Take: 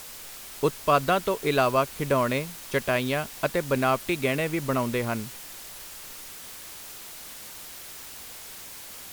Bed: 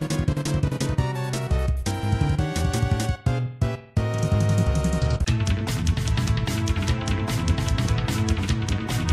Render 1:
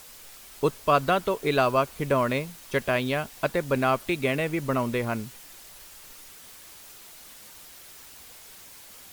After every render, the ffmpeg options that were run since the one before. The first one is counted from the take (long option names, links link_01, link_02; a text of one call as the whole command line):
ffmpeg -i in.wav -af "afftdn=noise_reduction=6:noise_floor=-42" out.wav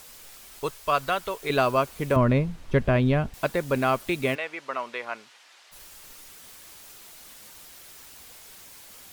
ffmpeg -i in.wav -filter_complex "[0:a]asettb=1/sr,asplit=3[link_01][link_02][link_03];[link_01]atrim=end=0.594[link_04];[link_02]atrim=start=0.59:end=1.5,asetpts=PTS-STARTPTS,afade=type=in:duration=0.004:curve=qsin,afade=type=out:start_time=0.906:duration=0.004:curve=qsin,equalizer=frequency=220:width_type=o:width=2.4:gain=-11[link_05];[link_03]atrim=start=1.496[link_06];[link_04][link_05]acrossfade=duration=0.004:curve1=hsin:curve2=qsin[link_07];[link_07][link_06]acrossfade=duration=0.004:curve1=qsin:curve2=hsin,asettb=1/sr,asplit=3[link_08][link_09][link_10];[link_08]atrim=end=2.164[link_11];[link_09]atrim=start=2.16:end=3.34,asetpts=PTS-STARTPTS,afade=type=in:duration=0.004:curve=qsin,afade=type=out:start_time=1.176:duration=0.004:curve=qsin,aemphasis=mode=reproduction:type=riaa[link_12];[link_10]atrim=start=3.336[link_13];[link_11][link_12]acrossfade=duration=0.004:curve1=hsin:curve2=qsin[link_14];[link_14][link_13]acrossfade=duration=0.004:curve1=qsin:curve2=hsin,asplit=3[link_15][link_16][link_17];[link_15]afade=type=out:start_time=4.34:duration=0.02[link_18];[link_16]highpass=750,lowpass=4400,afade=type=in:start_time=4.34:duration=0.02,afade=type=out:start_time=5.71:duration=0.02[link_19];[link_17]afade=type=in:start_time=5.71:duration=0.02[link_20];[link_18][link_19][link_20]amix=inputs=3:normalize=0" out.wav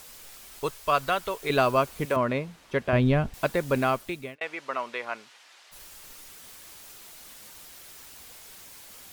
ffmpeg -i in.wav -filter_complex "[0:a]asettb=1/sr,asplit=3[link_01][link_02][link_03];[link_01]atrim=end=2.054[link_04];[link_02]atrim=start=2.05:end=2.93,asetpts=PTS-STARTPTS,afade=type=in:duration=0.004:curve=qsin,afade=type=out:start_time=0.876:duration=0.004:curve=qsin,highpass=frequency=510:poles=1[link_05];[link_03]atrim=start=2.926[link_06];[link_04][link_05]acrossfade=duration=0.004:curve1=hsin:curve2=qsin[link_07];[link_07][link_06]acrossfade=duration=0.004:curve1=qsin:curve2=hsin,asplit=2[link_08][link_09];[link_08]atrim=end=4.41,asetpts=PTS-STARTPTS,afade=type=out:start_time=3.79:duration=0.62[link_10];[link_09]atrim=start=4.41,asetpts=PTS-STARTPTS,afade=type=in:duration=0.004:curve=hsin[link_11];[link_10][link_11]concat=n=2:v=0:a=1" out.wav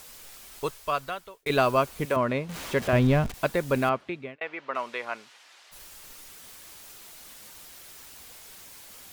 ffmpeg -i in.wav -filter_complex "[0:a]asettb=1/sr,asplit=3[link_01][link_02][link_03];[link_01]atrim=end=2.494[link_04];[link_02]atrim=start=2.49:end=3.32,asetpts=PTS-STARTPTS,afade=type=in:duration=0.004:curve=qsin,afade=type=out:start_time=0.826:duration=0.004:curve=qsin,aeval=exprs='val(0)+0.5*0.0224*sgn(val(0))':channel_layout=same[link_05];[link_03]atrim=start=3.316[link_06];[link_04][link_05]acrossfade=duration=0.004:curve1=hsin:curve2=qsin[link_07];[link_07][link_06]acrossfade=duration=0.004:curve1=qsin:curve2=hsin,asettb=1/sr,asplit=3[link_08][link_09][link_10];[link_08]atrim=end=3.894[link_11];[link_09]atrim=start=3.89:end=4.75,asetpts=PTS-STARTPTS,afade=type=in:duration=0.004:curve=qsin,afade=type=out:start_time=0.856:duration=0.004:curve=qsin,highpass=110,lowpass=2900[link_12];[link_10]atrim=start=4.746[link_13];[link_11][link_12]acrossfade=duration=0.004:curve1=hsin:curve2=qsin[link_14];[link_14][link_13]acrossfade=duration=0.004:curve1=qsin:curve2=hsin,asplit=2[link_15][link_16];[link_15]atrim=end=1.46,asetpts=PTS-STARTPTS,afade=type=out:start_time=0.61:duration=0.85[link_17];[link_16]atrim=start=1.46,asetpts=PTS-STARTPTS,afade=type=in:duration=0.004:curve=hsin[link_18];[link_17][link_18]concat=n=2:v=0:a=1" out.wav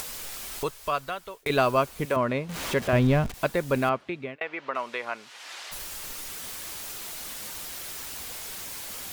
ffmpeg -i in.wav -af "acompressor=mode=upward:threshold=-27dB:ratio=2.5" out.wav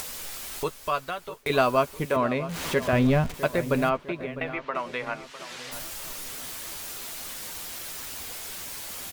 ffmpeg -i in.wav -filter_complex "[0:a]asplit=2[link_01][link_02];[link_02]adelay=12,volume=-10.5dB[link_03];[link_01][link_03]amix=inputs=2:normalize=0,asplit=2[link_04][link_05];[link_05]adelay=654,lowpass=frequency=2200:poles=1,volume=-13.5dB,asplit=2[link_06][link_07];[link_07]adelay=654,lowpass=frequency=2200:poles=1,volume=0.47,asplit=2[link_08][link_09];[link_09]adelay=654,lowpass=frequency=2200:poles=1,volume=0.47,asplit=2[link_10][link_11];[link_11]adelay=654,lowpass=frequency=2200:poles=1,volume=0.47,asplit=2[link_12][link_13];[link_13]adelay=654,lowpass=frequency=2200:poles=1,volume=0.47[link_14];[link_04][link_06][link_08][link_10][link_12][link_14]amix=inputs=6:normalize=0" out.wav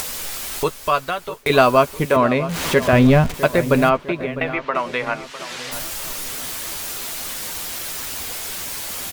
ffmpeg -i in.wav -af "volume=8.5dB,alimiter=limit=-2dB:level=0:latency=1" out.wav